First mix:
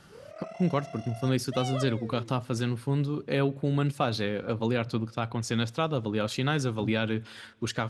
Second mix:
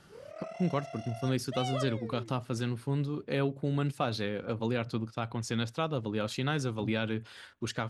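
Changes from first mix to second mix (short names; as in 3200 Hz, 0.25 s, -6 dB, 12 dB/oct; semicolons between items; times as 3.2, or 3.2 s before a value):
speech -3.0 dB; reverb: off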